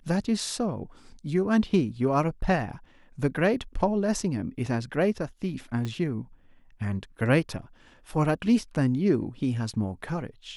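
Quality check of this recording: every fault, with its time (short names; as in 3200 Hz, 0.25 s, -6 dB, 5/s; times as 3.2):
5.85 pop -20 dBFS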